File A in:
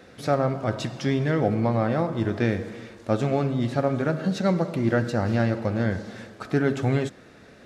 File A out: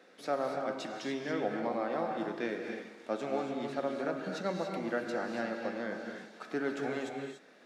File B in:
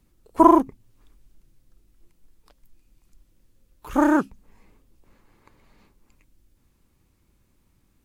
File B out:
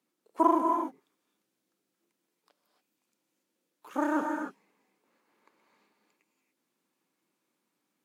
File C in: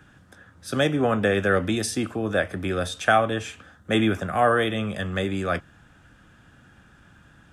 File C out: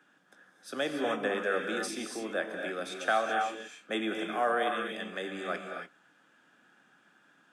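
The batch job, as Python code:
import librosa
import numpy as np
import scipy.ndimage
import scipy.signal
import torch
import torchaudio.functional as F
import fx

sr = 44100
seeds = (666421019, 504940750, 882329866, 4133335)

y = scipy.signal.sosfilt(scipy.signal.bessel(6, 320.0, 'highpass', norm='mag', fs=sr, output='sos'), x)
y = fx.high_shelf(y, sr, hz=7900.0, db=-4.5)
y = fx.rev_gated(y, sr, seeds[0], gate_ms=310, shape='rising', drr_db=3.0)
y = F.gain(torch.from_numpy(y), -8.5).numpy()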